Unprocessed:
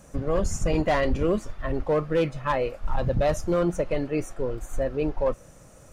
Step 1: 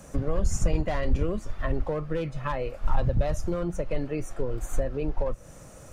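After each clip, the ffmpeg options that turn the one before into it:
-filter_complex "[0:a]acrossover=split=120[a][b];[b]acompressor=threshold=-33dB:ratio=4[c];[a][c]amix=inputs=2:normalize=0,volume=3.5dB"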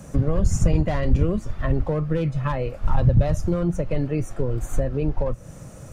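-af "equalizer=f=130:t=o:w=2:g=9,volume=2dB"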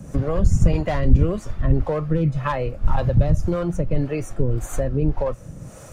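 -filter_complex "[0:a]acrossover=split=410[a][b];[a]aeval=exprs='val(0)*(1-0.7/2+0.7/2*cos(2*PI*1.8*n/s))':c=same[c];[b]aeval=exprs='val(0)*(1-0.7/2-0.7/2*cos(2*PI*1.8*n/s))':c=same[d];[c][d]amix=inputs=2:normalize=0,volume=5dB"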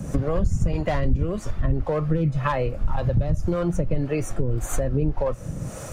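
-af "acompressor=threshold=-27dB:ratio=3,volume=6dB"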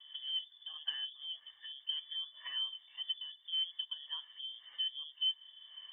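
-filter_complex "[0:a]asplit=3[a][b][c];[a]bandpass=f=530:t=q:w=8,volume=0dB[d];[b]bandpass=f=1.84k:t=q:w=8,volume=-6dB[e];[c]bandpass=f=2.48k:t=q:w=8,volume=-9dB[f];[d][e][f]amix=inputs=3:normalize=0,lowpass=f=3.1k:t=q:w=0.5098,lowpass=f=3.1k:t=q:w=0.6013,lowpass=f=3.1k:t=q:w=0.9,lowpass=f=3.1k:t=q:w=2.563,afreqshift=-3600,volume=-7dB"

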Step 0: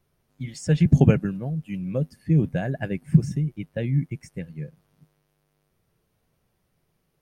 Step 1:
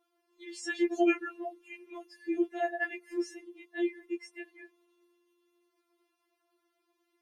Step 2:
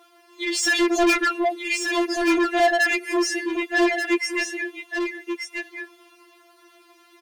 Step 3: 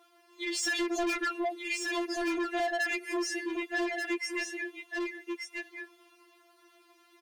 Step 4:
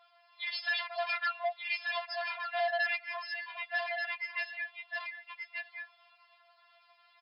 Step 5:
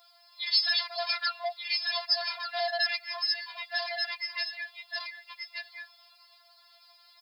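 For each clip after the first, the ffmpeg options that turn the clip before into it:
-af "highpass=f=320:w=0.5412,highpass=f=320:w=1.3066,highshelf=f=7.3k:g=-11,afftfilt=real='re*4*eq(mod(b,16),0)':imag='im*4*eq(mod(b,16),0)':win_size=2048:overlap=0.75,volume=2dB"
-filter_complex "[0:a]asplit=2[a][b];[b]highpass=f=720:p=1,volume=28dB,asoftclip=type=tanh:threshold=-15.5dB[c];[a][c]amix=inputs=2:normalize=0,lowpass=f=7.1k:p=1,volume=-6dB,aecho=1:1:1182:0.501,volume=3.5dB"
-af "acompressor=threshold=-20dB:ratio=6,volume=-8dB"
-af "afftfilt=real='re*between(b*sr/4096,570,5300)':imag='im*between(b*sr/4096,570,5300)':win_size=4096:overlap=0.75"
-af "aexciter=amount=10.1:drive=4.6:freq=4.2k"

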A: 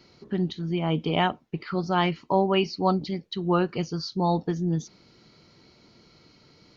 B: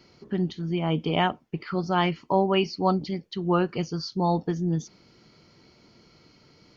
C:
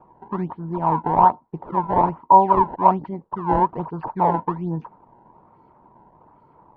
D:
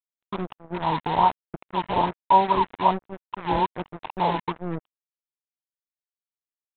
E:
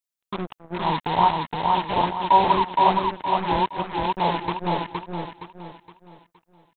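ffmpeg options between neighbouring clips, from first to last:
-af "bandreject=f=3.9k:w=9.4"
-af "acrusher=samples=21:mix=1:aa=0.000001:lfo=1:lforange=33.6:lforate=1.2,lowpass=f=950:t=q:w=10,volume=-1dB"
-af "highshelf=f=2.2k:g=-2.5,aresample=8000,acrusher=bits=3:mix=0:aa=0.5,aresample=44100,volume=-4.5dB"
-filter_complex "[0:a]highshelf=f=3.3k:g=8,asplit=2[a][b];[b]aecho=0:1:467|934|1401|1868|2335:0.708|0.262|0.0969|0.0359|0.0133[c];[a][c]amix=inputs=2:normalize=0"

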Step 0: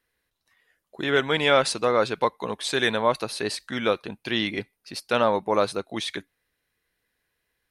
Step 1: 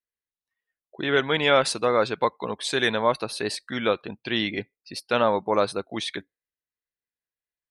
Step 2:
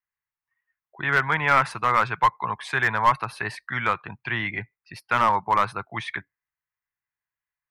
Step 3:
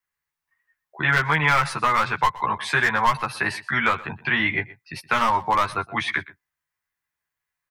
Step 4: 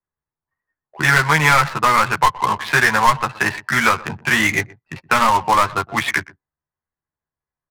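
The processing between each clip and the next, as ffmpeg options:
-af "afftdn=nr=23:nf=-46"
-filter_complex "[0:a]equalizer=f=125:t=o:w=1:g=8,equalizer=f=250:t=o:w=1:g=-9,equalizer=f=500:t=o:w=1:g=-11,equalizer=f=1k:t=o:w=1:g=10,equalizer=f=2k:t=o:w=1:g=8,equalizer=f=4k:t=o:w=1:g=-10,equalizer=f=8k:t=o:w=1:g=-11,acrossover=split=200|1400|1600[a][b][c][d];[d]alimiter=limit=-21.5dB:level=0:latency=1:release=406[e];[a][b][c][e]amix=inputs=4:normalize=0,aeval=exprs='clip(val(0),-1,0.211)':c=same"
-filter_complex "[0:a]acrossover=split=120|3000[a][b][c];[b]acompressor=threshold=-24dB:ratio=6[d];[a][d][c]amix=inputs=3:normalize=0,asplit=2[e][f];[f]adelay=13,volume=-2dB[g];[e][g]amix=inputs=2:normalize=0,aecho=1:1:122:0.106,volume=4.5dB"
-af "adynamicsmooth=sensitivity=4:basefreq=3k,acrusher=bits=3:mode=log:mix=0:aa=0.000001,adynamicsmooth=sensitivity=6.5:basefreq=910,volume=5.5dB"

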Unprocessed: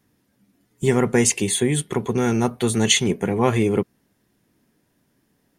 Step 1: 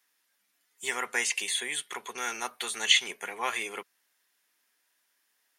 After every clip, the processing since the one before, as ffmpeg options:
-filter_complex "[0:a]acrossover=split=4000[a][b];[b]acompressor=threshold=-31dB:ratio=4:attack=1:release=60[c];[a][c]amix=inputs=2:normalize=0,highpass=1.4k"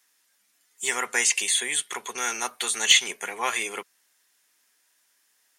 -af "equalizer=f=7.4k:t=o:w=1:g=6.5,acontrast=65,volume=-2.5dB"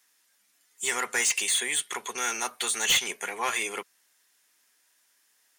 -af "asoftclip=type=tanh:threshold=-18dB"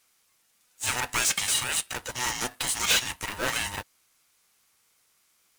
-af "aeval=exprs='val(0)*sgn(sin(2*PI*500*n/s))':c=same"

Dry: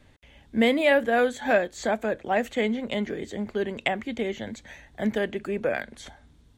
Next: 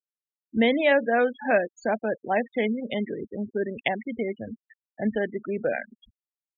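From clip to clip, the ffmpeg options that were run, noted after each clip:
-af "afftfilt=real='re*gte(hypot(re,im),0.0447)':imag='im*gte(hypot(re,im),0.0447)':win_size=1024:overlap=0.75"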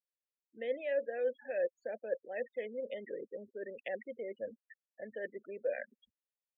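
-filter_complex "[0:a]areverse,acompressor=threshold=-32dB:ratio=6,areverse,asplit=3[a][b][c];[a]bandpass=f=530:t=q:w=8,volume=0dB[d];[b]bandpass=f=1.84k:t=q:w=8,volume=-6dB[e];[c]bandpass=f=2.48k:t=q:w=8,volume=-9dB[f];[d][e][f]amix=inputs=3:normalize=0,volume=5dB"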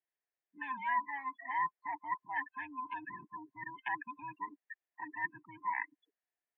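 -af "afftfilt=real='real(if(between(b,1,1008),(2*floor((b-1)/24)+1)*24-b,b),0)':imag='imag(if(between(b,1,1008),(2*floor((b-1)/24)+1)*24-b,b),0)*if(between(b,1,1008),-1,1)':win_size=2048:overlap=0.75,highpass=f=220:w=0.5412,highpass=f=220:w=1.3066,equalizer=f=250:t=q:w=4:g=-6,equalizer=f=380:t=q:w=4:g=5,equalizer=f=700:t=q:w=4:g=8,equalizer=f=1.1k:t=q:w=4:g=-6,equalizer=f=1.8k:t=q:w=4:g=8,lowpass=f=2.6k:w=0.5412,lowpass=f=2.6k:w=1.3066,volume=2dB"

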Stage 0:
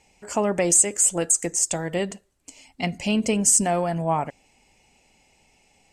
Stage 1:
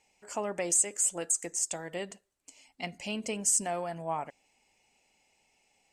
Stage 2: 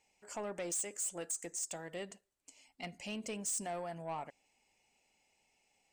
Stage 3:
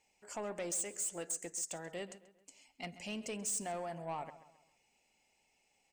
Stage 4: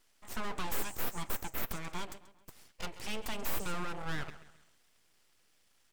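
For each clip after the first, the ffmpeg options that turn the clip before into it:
-af "lowshelf=f=250:g=-11,volume=-8.5dB"
-af "asoftclip=type=tanh:threshold=-28dB,volume=-5dB"
-filter_complex "[0:a]asplit=2[a][b];[b]adelay=134,lowpass=f=3.7k:p=1,volume=-14.5dB,asplit=2[c][d];[d]adelay=134,lowpass=f=3.7k:p=1,volume=0.42,asplit=2[e][f];[f]adelay=134,lowpass=f=3.7k:p=1,volume=0.42,asplit=2[g][h];[h]adelay=134,lowpass=f=3.7k:p=1,volume=0.42[i];[a][c][e][g][i]amix=inputs=5:normalize=0"
-af "aeval=exprs='abs(val(0))':c=same,volume=7dB"

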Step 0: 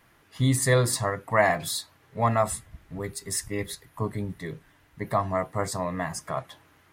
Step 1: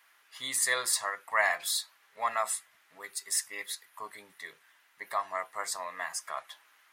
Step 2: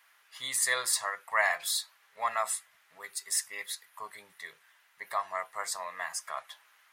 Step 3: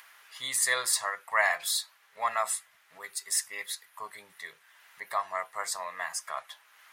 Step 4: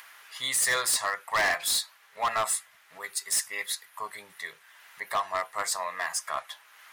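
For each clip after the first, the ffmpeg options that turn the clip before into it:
-af "highpass=1.2k"
-af "equalizer=f=290:t=o:w=0.78:g=-8"
-af "acompressor=mode=upward:threshold=-49dB:ratio=2.5,volume=1.5dB"
-af "asoftclip=type=hard:threshold=-26dB,volume=4.5dB"

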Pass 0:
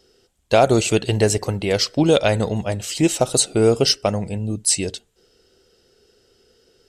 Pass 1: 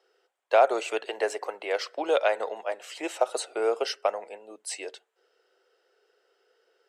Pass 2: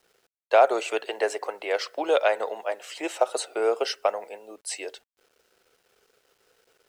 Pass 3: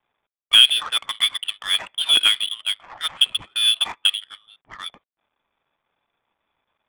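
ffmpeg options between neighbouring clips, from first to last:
-filter_complex "[0:a]highpass=f=330:w=0.5412,highpass=f=330:w=1.3066,acrossover=split=510 2300:gain=0.0708 1 0.141[a][b][c];[a][b][c]amix=inputs=3:normalize=0,volume=-1.5dB"
-af "acrusher=bits=10:mix=0:aa=0.000001,volume=2dB"
-af "lowpass=f=3.3k:t=q:w=0.5098,lowpass=f=3.3k:t=q:w=0.6013,lowpass=f=3.3k:t=q:w=0.9,lowpass=f=3.3k:t=q:w=2.563,afreqshift=-3900,adynamicsmooth=sensitivity=6:basefreq=1.1k,volume=4.5dB"

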